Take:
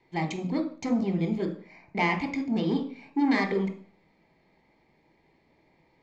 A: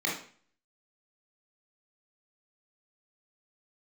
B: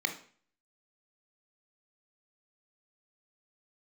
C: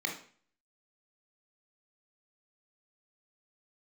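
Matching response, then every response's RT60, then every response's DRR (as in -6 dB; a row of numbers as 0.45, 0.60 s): B; 0.45, 0.45, 0.45 s; -3.5, 6.0, 1.5 dB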